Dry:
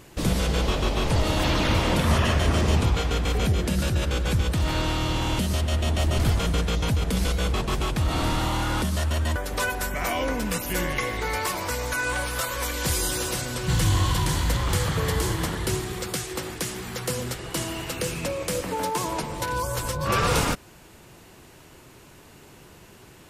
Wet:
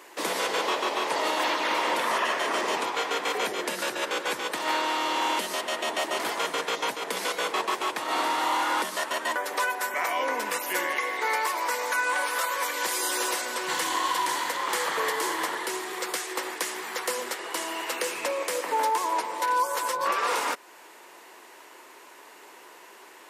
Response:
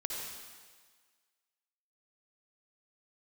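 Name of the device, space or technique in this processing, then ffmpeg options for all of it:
laptop speaker: -af "highpass=f=350:w=0.5412,highpass=f=350:w=1.3066,equalizer=f=980:t=o:w=0.48:g=8,equalizer=f=1.9k:t=o:w=0.53:g=6,alimiter=limit=-16dB:level=0:latency=1:release=391"

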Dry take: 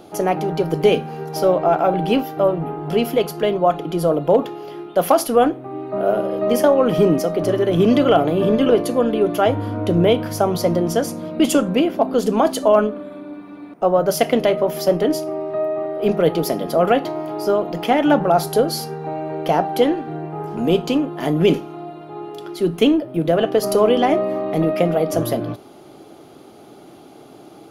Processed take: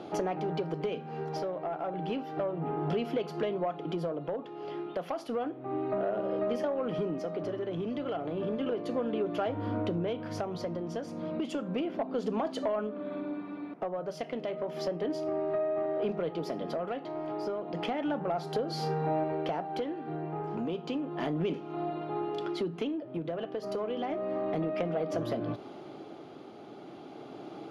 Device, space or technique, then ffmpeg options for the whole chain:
AM radio: -filter_complex "[0:a]highpass=110,lowpass=3.9k,acompressor=threshold=-27dB:ratio=8,asoftclip=type=tanh:threshold=-20.5dB,tremolo=f=0.32:d=0.38,asettb=1/sr,asplit=3[a][b][c];[a]atrim=end=18.674[d];[b]atrim=start=18.67:end=19.24,asetpts=PTS-STARTPTS,afade=t=in:d=0.004:c=qsin,afade=t=out:st=0.566:d=0.004:c=qsin,asplit=2[e][f];[f]adelay=32,volume=-5.5dB[g];[e][g]amix=inputs=2:normalize=0,atrim=end_sample=25137[h];[c]atrim=start=19.236[i];[d][h]acrossfade=d=0.004:c1=hsin:c2=qsin[j];[j][i]acrossfade=d=0.004:c1=qsin:c2=hsin"

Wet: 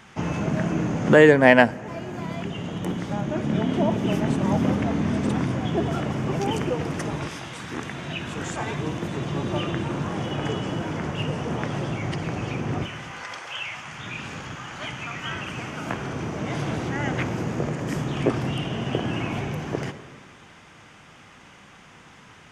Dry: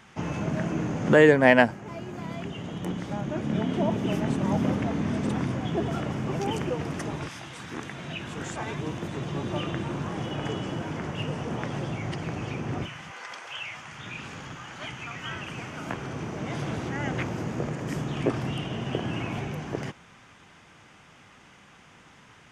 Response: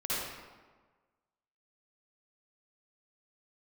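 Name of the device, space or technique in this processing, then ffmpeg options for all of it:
compressed reverb return: -filter_complex "[0:a]asplit=2[a][b];[1:a]atrim=start_sample=2205[c];[b][c]afir=irnorm=-1:irlink=0,acompressor=threshold=-24dB:ratio=6,volume=-15dB[d];[a][d]amix=inputs=2:normalize=0,volume=3dB"

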